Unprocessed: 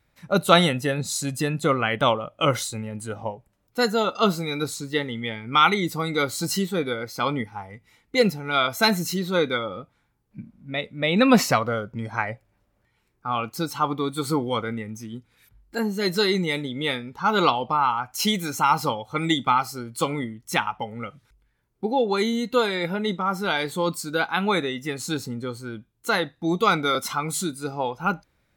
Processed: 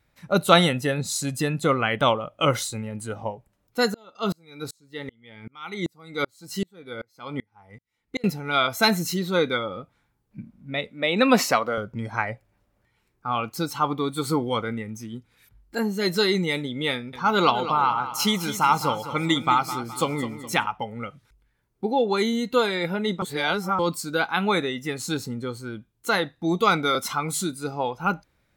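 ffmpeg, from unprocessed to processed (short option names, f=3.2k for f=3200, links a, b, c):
-filter_complex "[0:a]asettb=1/sr,asplit=3[a][b][c];[a]atrim=end=3.944[d];[b]atrim=start=3.94:end=8.24,asetpts=PTS-STARTPTS,afade=t=in:d=0.004:c=qsin,afade=t=out:st=4.296:d=0.004:c=qsin,aeval=exprs='val(0)*pow(10,-36*if(lt(mod(-2.6*n/s,1),2*abs(-2.6)/1000),1-mod(-2.6*n/s,1)/(2*abs(-2.6)/1000),(mod(-2.6*n/s,1)-2*abs(-2.6)/1000)/(1-2*abs(-2.6)/1000))/20)':c=same[e];[c]atrim=start=8.236[f];[d][e]acrossfade=d=0.004:c1=hsin:c2=qsin[g];[g][f]acrossfade=d=0.004:c1=qsin:c2=hsin,asettb=1/sr,asplit=3[h][i][j];[h]atrim=end=10.904[k];[i]atrim=start=10.9:end=11.78,asetpts=PTS-STARTPTS,afade=t=in:d=0.004:c=qsin,afade=t=out:st=0.876:d=0.004:c=qsin,highpass=250[l];[j]atrim=start=11.776[m];[k][l]acrossfade=d=0.004:c1=hsin:c2=qsin[n];[n][m]acrossfade=d=0.004:c1=qsin:c2=hsin,asettb=1/sr,asplit=3[o][p][q];[o]atrim=end=16.924[r];[p]atrim=start=16.92:end=20.66,asetpts=PTS-STARTPTS,afade=t=in:d=0.004:c=qsin,afade=t=out:st=3.736:d=0.004:c=qsin,aecho=1:1:209|418|627|836:0.251|0.103|0.0422|0.0173,atrim=end_sample=164934[s];[q]atrim=start=20.656[t];[r][s]acrossfade=d=0.004:c1=hsin:c2=qsin[u];[u][t]acrossfade=d=0.004:c1=qsin:c2=hsin,asplit=3[v][w][x];[v]atrim=end=23.222[y];[w]atrim=start=23.218:end=23.792,asetpts=PTS-STARTPTS,areverse[z];[x]atrim=start=23.788[aa];[y][z]acrossfade=d=0.004:c1=hsin:c2=hsin[ab];[ab][aa]acrossfade=d=0.004:c1=hsin:c2=hsin"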